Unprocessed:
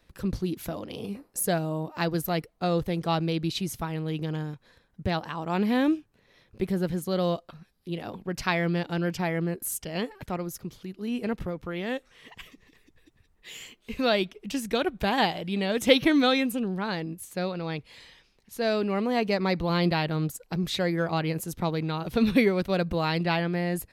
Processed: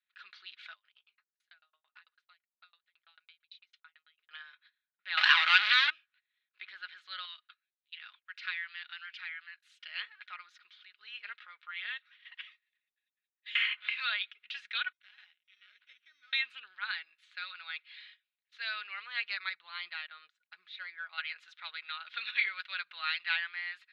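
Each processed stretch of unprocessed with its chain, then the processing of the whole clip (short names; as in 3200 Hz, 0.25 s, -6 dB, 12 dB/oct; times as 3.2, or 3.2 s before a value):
0.73–4.31 compressor 8:1, threshold -38 dBFS + dB-ramp tremolo decaying 9 Hz, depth 29 dB
5.17–5.9 sample leveller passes 5 + high shelf 2600 Hz +11 dB + fast leveller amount 50%
7.25–9.8 HPF 1300 Hz + compressor 1.5:1, threshold -41 dBFS
13.55–14.21 high shelf 5900 Hz -12 dB + three-band squash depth 100%
14.92–16.33 treble ducked by the level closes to 1400 Hz, closed at -17 dBFS + passive tone stack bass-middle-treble 10-0-1 + sample-rate reducer 5800 Hz
19.49–21.18 tilt shelf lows +6 dB, about 670 Hz + upward expander, over -41 dBFS
whole clip: gate -51 dBFS, range -21 dB; Chebyshev band-pass 1400–3900 Hz, order 3; comb 4.8 ms, depth 40%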